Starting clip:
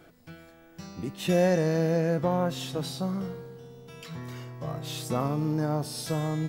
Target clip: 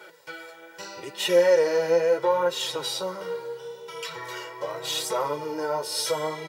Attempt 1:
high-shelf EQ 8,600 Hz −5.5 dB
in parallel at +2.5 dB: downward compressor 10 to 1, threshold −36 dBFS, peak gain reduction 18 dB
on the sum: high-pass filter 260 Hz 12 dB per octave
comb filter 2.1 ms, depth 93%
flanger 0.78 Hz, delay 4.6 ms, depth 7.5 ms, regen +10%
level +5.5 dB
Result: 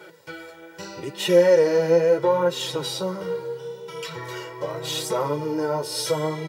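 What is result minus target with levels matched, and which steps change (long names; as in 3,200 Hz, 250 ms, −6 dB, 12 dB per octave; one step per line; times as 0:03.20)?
250 Hz band +5.0 dB
change: high-pass filter 530 Hz 12 dB per octave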